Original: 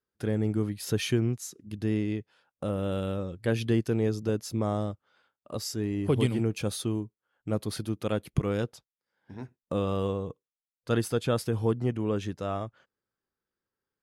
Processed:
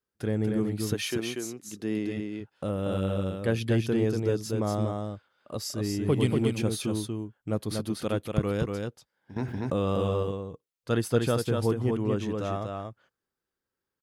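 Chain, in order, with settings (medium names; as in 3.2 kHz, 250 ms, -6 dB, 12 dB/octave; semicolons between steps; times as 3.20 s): 0.93–2.16 s: high-pass 440 Hz -> 170 Hz 12 dB/octave; delay 238 ms -4 dB; 9.36–10.23 s: level flattener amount 70%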